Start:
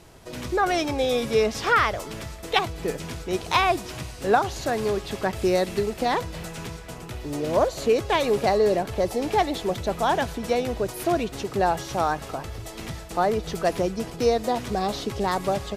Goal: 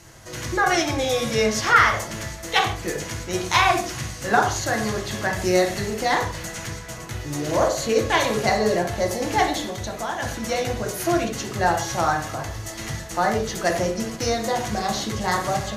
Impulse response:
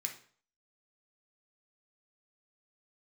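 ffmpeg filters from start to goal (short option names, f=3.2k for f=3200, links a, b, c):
-filter_complex "[0:a]asplit=3[a][b][c];[a]afade=t=out:st=9.64:d=0.02[d];[b]acompressor=threshold=-27dB:ratio=6,afade=t=in:st=9.64:d=0.02,afade=t=out:st=10.22:d=0.02[e];[c]afade=t=in:st=10.22:d=0.02[f];[d][e][f]amix=inputs=3:normalize=0[g];[1:a]atrim=start_sample=2205,afade=t=out:st=0.2:d=0.01,atrim=end_sample=9261,asetrate=37485,aresample=44100[h];[g][h]afir=irnorm=-1:irlink=0,volume=4.5dB"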